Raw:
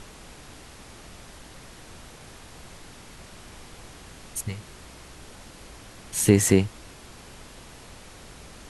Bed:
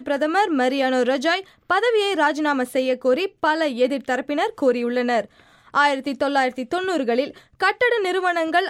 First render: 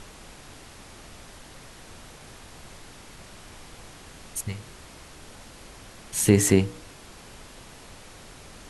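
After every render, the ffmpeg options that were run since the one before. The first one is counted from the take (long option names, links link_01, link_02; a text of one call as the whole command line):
ffmpeg -i in.wav -af "bandreject=frequency=60:width_type=h:width=4,bandreject=frequency=120:width_type=h:width=4,bandreject=frequency=180:width_type=h:width=4,bandreject=frequency=240:width_type=h:width=4,bandreject=frequency=300:width_type=h:width=4,bandreject=frequency=360:width_type=h:width=4,bandreject=frequency=420:width_type=h:width=4,bandreject=frequency=480:width_type=h:width=4" out.wav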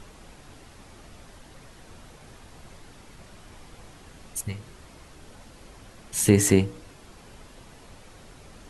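ffmpeg -i in.wav -af "afftdn=noise_reduction=6:noise_floor=-47" out.wav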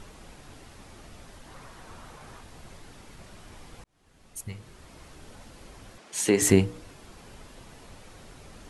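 ffmpeg -i in.wav -filter_complex "[0:a]asettb=1/sr,asplit=3[link_01][link_02][link_03];[link_01]atrim=end=1.474[link_04];[link_02]atrim=start=1.47:end=2.41,asetpts=PTS-STARTPTS,afade=type=in:duration=0.004:curve=qsin,afade=type=out:start_time=0.936:duration=0.004:curve=qsin,equalizer=frequency=1100:width_type=o:width=1.1:gain=7.5[link_05];[link_03]atrim=start=2.406[link_06];[link_04][link_05]acrossfade=duration=0.004:curve1=hsin:curve2=qsin[link_07];[link_07][link_06]acrossfade=duration=0.004:curve1=qsin:curve2=hsin,asettb=1/sr,asplit=3[link_08][link_09][link_10];[link_08]atrim=end=5.984[link_11];[link_09]atrim=start=5.98:end=6.42,asetpts=PTS-STARTPTS,afade=type=in:duration=0.004:curve=qsin,afade=type=out:start_time=0.436:duration=0.004:curve=qsin,highpass=310,lowpass=7900[link_12];[link_10]atrim=start=6.416[link_13];[link_11][link_12]acrossfade=duration=0.004:curve1=hsin:curve2=qsin[link_14];[link_14][link_13]acrossfade=duration=0.004:curve1=qsin:curve2=hsin,asplit=2[link_15][link_16];[link_15]atrim=end=3.84,asetpts=PTS-STARTPTS,afade=type=out:start_time=3.836:duration=0.004:curve=hsin[link_17];[link_16]atrim=start=3.84,asetpts=PTS-STARTPTS,afade=type=in:duration=1.23[link_18];[link_17][link_18]concat=n=2:v=0:a=1" out.wav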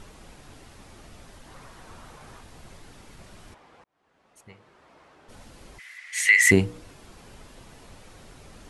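ffmpeg -i in.wav -filter_complex "[0:a]asplit=3[link_01][link_02][link_03];[link_01]afade=type=out:start_time=3.53:duration=0.02[link_04];[link_02]bandpass=frequency=910:width_type=q:width=0.66,afade=type=in:start_time=3.53:duration=0.02,afade=type=out:start_time=5.28:duration=0.02[link_05];[link_03]afade=type=in:start_time=5.28:duration=0.02[link_06];[link_04][link_05][link_06]amix=inputs=3:normalize=0,asplit=3[link_07][link_08][link_09];[link_07]afade=type=out:start_time=5.78:duration=0.02[link_10];[link_08]highpass=frequency=2000:width_type=q:width=15,afade=type=in:start_time=5.78:duration=0.02,afade=type=out:start_time=6.5:duration=0.02[link_11];[link_09]afade=type=in:start_time=6.5:duration=0.02[link_12];[link_10][link_11][link_12]amix=inputs=3:normalize=0" out.wav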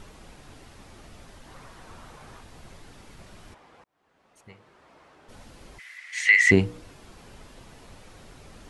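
ffmpeg -i in.wav -filter_complex "[0:a]acrossover=split=6200[link_01][link_02];[link_02]acompressor=threshold=-60dB:ratio=4:attack=1:release=60[link_03];[link_01][link_03]amix=inputs=2:normalize=0" out.wav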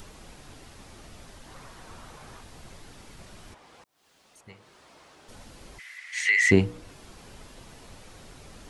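ffmpeg -i in.wav -filter_complex "[0:a]acrossover=split=630|3500[link_01][link_02][link_03];[link_02]alimiter=limit=-16dB:level=0:latency=1:release=23[link_04];[link_03]acompressor=mode=upward:threshold=-51dB:ratio=2.5[link_05];[link_01][link_04][link_05]amix=inputs=3:normalize=0" out.wav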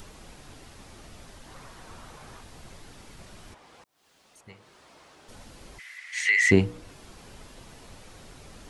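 ffmpeg -i in.wav -af anull out.wav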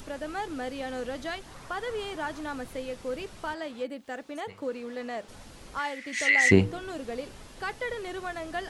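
ffmpeg -i in.wav -i bed.wav -filter_complex "[1:a]volume=-15dB[link_01];[0:a][link_01]amix=inputs=2:normalize=0" out.wav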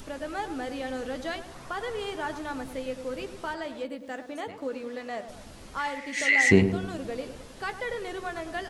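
ffmpeg -i in.wav -filter_complex "[0:a]asplit=2[link_01][link_02];[link_02]adelay=15,volume=-11dB[link_03];[link_01][link_03]amix=inputs=2:normalize=0,asplit=2[link_04][link_05];[link_05]adelay=104,lowpass=frequency=1000:poles=1,volume=-8.5dB,asplit=2[link_06][link_07];[link_07]adelay=104,lowpass=frequency=1000:poles=1,volume=0.54,asplit=2[link_08][link_09];[link_09]adelay=104,lowpass=frequency=1000:poles=1,volume=0.54,asplit=2[link_10][link_11];[link_11]adelay=104,lowpass=frequency=1000:poles=1,volume=0.54,asplit=2[link_12][link_13];[link_13]adelay=104,lowpass=frequency=1000:poles=1,volume=0.54,asplit=2[link_14][link_15];[link_15]adelay=104,lowpass=frequency=1000:poles=1,volume=0.54[link_16];[link_04][link_06][link_08][link_10][link_12][link_14][link_16]amix=inputs=7:normalize=0" out.wav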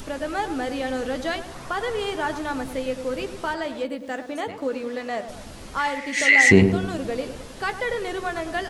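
ffmpeg -i in.wav -af "volume=6.5dB,alimiter=limit=-2dB:level=0:latency=1" out.wav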